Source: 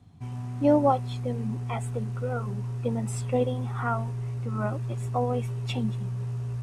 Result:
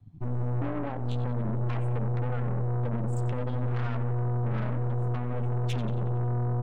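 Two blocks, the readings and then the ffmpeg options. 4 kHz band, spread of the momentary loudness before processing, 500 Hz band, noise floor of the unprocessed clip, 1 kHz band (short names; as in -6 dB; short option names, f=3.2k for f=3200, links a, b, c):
n/a, 9 LU, -7.0 dB, -34 dBFS, -7.0 dB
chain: -filter_complex "[0:a]aemphasis=mode=reproduction:type=cd,afftdn=nr=19:nf=-39,equalizer=f=88:w=6:g=-6.5,acompressor=threshold=-27dB:ratio=6,alimiter=level_in=4dB:limit=-24dB:level=0:latency=1:release=148,volume=-4dB,acrossover=split=340|3000[a][b][c];[b]acompressor=threshold=-45dB:ratio=4[d];[a][d][c]amix=inputs=3:normalize=0,asoftclip=type=tanh:threshold=-37dB,asplit=2[e][f];[f]adelay=91,lowpass=f=4.6k:p=1,volume=-11dB,asplit=2[g][h];[h]adelay=91,lowpass=f=4.6k:p=1,volume=0.54,asplit=2[i][j];[j]adelay=91,lowpass=f=4.6k:p=1,volume=0.54,asplit=2[k][l];[l]adelay=91,lowpass=f=4.6k:p=1,volume=0.54,asplit=2[m][n];[n]adelay=91,lowpass=f=4.6k:p=1,volume=0.54,asplit=2[o][p];[p]adelay=91,lowpass=f=4.6k:p=1,volume=0.54[q];[e][g][i][k][m][o][q]amix=inputs=7:normalize=0,aeval=exprs='0.0224*(cos(1*acos(clip(val(0)/0.0224,-1,1)))-cos(1*PI/2))+0.00794*(cos(4*acos(clip(val(0)/0.0224,-1,1)))-cos(4*PI/2))':c=same,volume=7dB"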